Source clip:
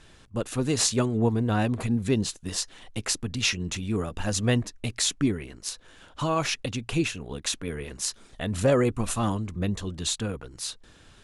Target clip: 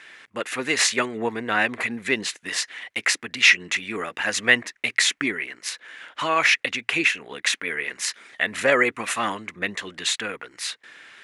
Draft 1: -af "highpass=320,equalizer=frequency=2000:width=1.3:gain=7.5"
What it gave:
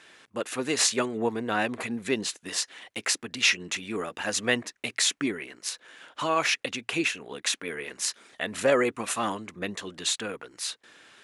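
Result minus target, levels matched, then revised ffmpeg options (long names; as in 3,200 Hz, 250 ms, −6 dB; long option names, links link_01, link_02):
2,000 Hz band −4.0 dB
-af "highpass=320,equalizer=frequency=2000:width=1.3:gain=19.5"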